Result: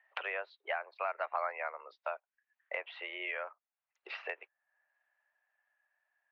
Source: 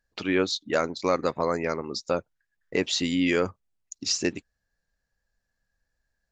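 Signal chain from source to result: Doppler pass-by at 1.46, 13 m/s, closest 1.8 m; mistuned SSB +100 Hz 580–2700 Hz; three-band squash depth 100%; gain +4 dB

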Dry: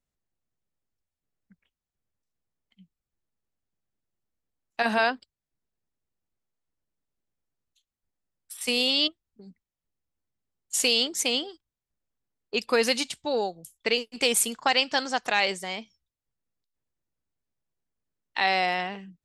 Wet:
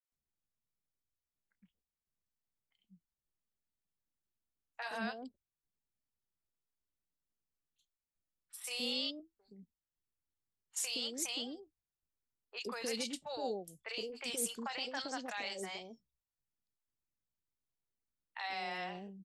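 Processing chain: flange 0.18 Hz, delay 0.6 ms, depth 5.7 ms, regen -78%; limiter -22 dBFS, peak gain reduction 9 dB; three bands offset in time mids, highs, lows 30/120 ms, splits 600/2500 Hz; gain -4 dB

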